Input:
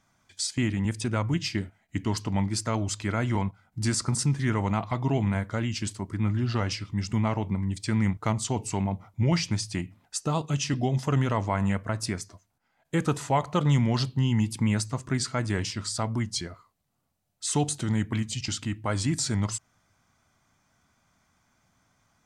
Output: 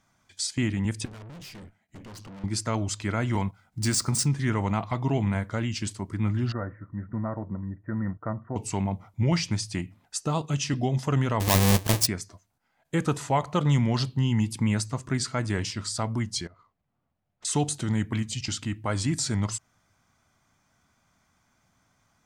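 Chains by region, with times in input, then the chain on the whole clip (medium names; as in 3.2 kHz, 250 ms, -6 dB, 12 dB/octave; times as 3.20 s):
1.05–2.44 s: peaking EQ 190 Hz +4.5 dB 1.2 oct + valve stage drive 42 dB, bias 0.75
3.33–4.28 s: median filter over 3 samples + treble shelf 4.3 kHz +6.5 dB
6.52–8.56 s: rippled Chebyshev low-pass 1.9 kHz, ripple 6 dB + comb of notches 420 Hz
11.40–12.07 s: square wave that keeps the level + treble shelf 4.6 kHz +11 dB + band-stop 1.4 kHz, Q 6.6
16.47–17.45 s: median filter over 9 samples + distance through air 100 m + compression 5:1, threshold -52 dBFS
whole clip: none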